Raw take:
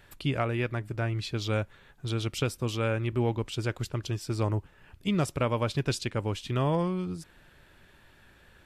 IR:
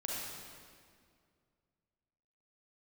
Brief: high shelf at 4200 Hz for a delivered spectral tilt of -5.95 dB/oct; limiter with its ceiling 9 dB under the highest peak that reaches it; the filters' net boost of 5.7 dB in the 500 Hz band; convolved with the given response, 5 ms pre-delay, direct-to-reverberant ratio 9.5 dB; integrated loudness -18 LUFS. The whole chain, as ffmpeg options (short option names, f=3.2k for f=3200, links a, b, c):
-filter_complex "[0:a]equalizer=f=500:t=o:g=7,highshelf=f=4.2k:g=-5,alimiter=limit=-22.5dB:level=0:latency=1,asplit=2[a][b];[1:a]atrim=start_sample=2205,adelay=5[c];[b][c]afir=irnorm=-1:irlink=0,volume=-12dB[d];[a][d]amix=inputs=2:normalize=0,volume=14.5dB"